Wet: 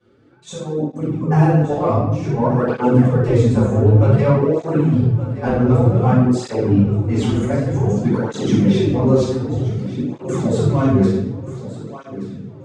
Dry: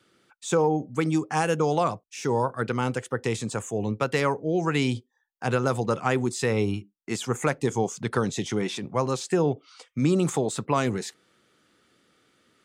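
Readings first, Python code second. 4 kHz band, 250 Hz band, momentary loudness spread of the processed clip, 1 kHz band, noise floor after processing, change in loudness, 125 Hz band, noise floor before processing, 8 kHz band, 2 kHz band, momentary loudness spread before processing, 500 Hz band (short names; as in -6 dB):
0.0 dB, +11.0 dB, 12 LU, +3.5 dB, -39 dBFS, +9.5 dB, +14.5 dB, -73 dBFS, n/a, -1.0 dB, 7 LU, +7.0 dB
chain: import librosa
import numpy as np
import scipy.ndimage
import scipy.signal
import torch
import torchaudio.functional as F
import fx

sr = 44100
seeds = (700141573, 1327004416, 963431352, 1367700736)

p1 = fx.tilt_shelf(x, sr, db=10.0, hz=1200.0)
p2 = np.clip(p1, -10.0 ** (-12.0 / 20.0), 10.0 ** (-12.0 / 20.0))
p3 = p1 + (p2 * 10.0 ** (-7.0 / 20.0))
p4 = fx.high_shelf(p3, sr, hz=5200.0, db=2.5)
p5 = fx.level_steps(p4, sr, step_db=13)
p6 = scipy.signal.sosfilt(scipy.signal.butter(2, 6600.0, 'lowpass', fs=sr, output='sos'), p5)
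p7 = fx.over_compress(p6, sr, threshold_db=-21.0, ratio=-0.5)
p8 = p7 + fx.echo_feedback(p7, sr, ms=1178, feedback_pct=50, wet_db=-14, dry=0)
p9 = fx.room_shoebox(p8, sr, seeds[0], volume_m3=380.0, walls='mixed', distance_m=5.6)
p10 = fx.flanger_cancel(p9, sr, hz=0.54, depth_ms=7.3)
y = p10 * 10.0 ** (-4.0 / 20.0)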